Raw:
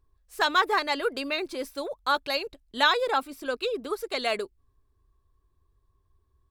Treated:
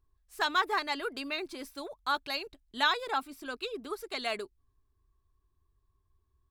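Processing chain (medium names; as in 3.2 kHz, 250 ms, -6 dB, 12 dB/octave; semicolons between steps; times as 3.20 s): peaking EQ 520 Hz -9.5 dB 0.32 oct; trim -5 dB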